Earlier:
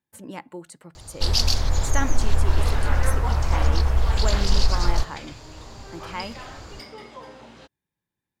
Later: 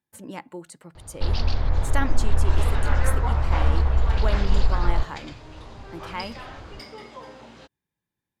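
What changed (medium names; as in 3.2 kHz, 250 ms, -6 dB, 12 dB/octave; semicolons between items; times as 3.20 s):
first sound: add distance through air 360 m; second sound: add treble shelf 12 kHz -4 dB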